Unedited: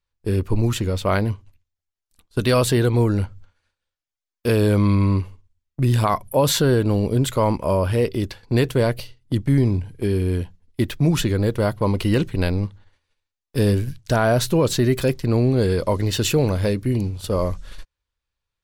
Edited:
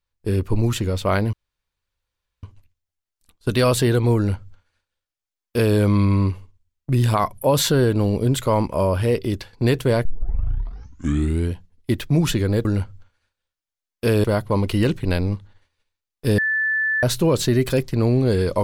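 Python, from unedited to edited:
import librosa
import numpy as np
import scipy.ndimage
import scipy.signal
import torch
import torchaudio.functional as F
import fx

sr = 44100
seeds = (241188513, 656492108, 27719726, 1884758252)

y = fx.edit(x, sr, fx.insert_room_tone(at_s=1.33, length_s=1.1),
    fx.duplicate(start_s=3.07, length_s=1.59, to_s=11.55),
    fx.tape_start(start_s=8.95, length_s=1.47),
    fx.bleep(start_s=13.69, length_s=0.65, hz=1750.0, db=-18.0), tone=tone)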